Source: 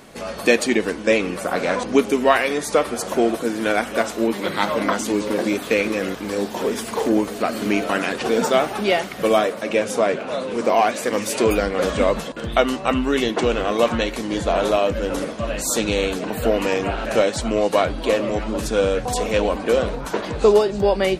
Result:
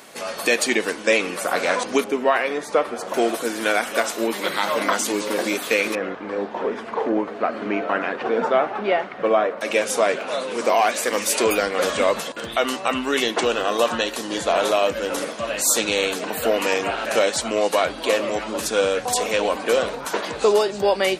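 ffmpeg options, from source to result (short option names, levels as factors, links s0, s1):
-filter_complex "[0:a]asettb=1/sr,asplit=3[s0][s1][s2];[s0]atrim=end=2.044[s3];[s1]atrim=start=2.04:end=3.14,asetpts=PTS-STARTPTS,afade=t=in:d=0.004:c=qsin,afade=t=out:st=1.096:d=0.004:c=qsin,lowpass=f=1300:p=1[s4];[s2]atrim=start=3.136[s5];[s3][s4]acrossfade=d=0.004:c1=hsin:c2=qsin[s6];[s6][s5]acrossfade=d=0.004:c1=qsin:c2=hsin,asettb=1/sr,asplit=3[s7][s8][s9];[s7]atrim=end=5.954[s10];[s8]atrim=start=5.95:end=9.61,asetpts=PTS-STARTPTS,afade=t=in:d=0.004:c=qsin,afade=t=out:st=3.656:d=0.004:c=qsin,lowpass=1600[s11];[s9]atrim=start=9.606[s12];[s10][s11]acrossfade=d=0.004:c1=hsin:c2=qsin[s13];[s13][s12]acrossfade=d=0.004:c1=qsin:c2=hsin,asettb=1/sr,asplit=3[s14][s15][s16];[s14]atrim=end=13.454[s17];[s15]atrim=start=13.45:end=14.35,asetpts=PTS-STARTPTS,afade=t=in:d=0.004:c=qsin,afade=t=out:st=0.896:d=0.004:c=qsin,bandreject=f=2200:w=5.2[s18];[s16]atrim=start=14.346[s19];[s17][s18]acrossfade=d=0.004:c1=hsin:c2=qsin[s20];[s20][s19]acrossfade=d=0.004:c1=qsin:c2=hsin,highpass=f=640:p=1,highshelf=f=6900:g=4,alimiter=level_in=2.99:limit=0.891:release=50:level=0:latency=1,volume=0.473"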